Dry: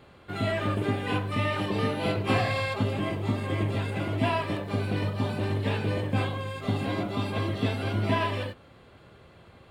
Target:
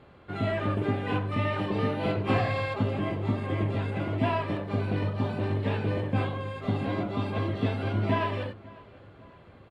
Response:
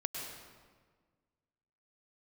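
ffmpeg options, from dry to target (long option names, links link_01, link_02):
-filter_complex "[0:a]aemphasis=mode=reproduction:type=75kf,asplit=2[link_01][link_02];[link_02]adelay=548,lowpass=frequency=3700:poles=1,volume=-22dB,asplit=2[link_03][link_04];[link_04]adelay=548,lowpass=frequency=3700:poles=1,volume=0.53,asplit=2[link_05][link_06];[link_06]adelay=548,lowpass=frequency=3700:poles=1,volume=0.53,asplit=2[link_07][link_08];[link_08]adelay=548,lowpass=frequency=3700:poles=1,volume=0.53[link_09];[link_01][link_03][link_05][link_07][link_09]amix=inputs=5:normalize=0"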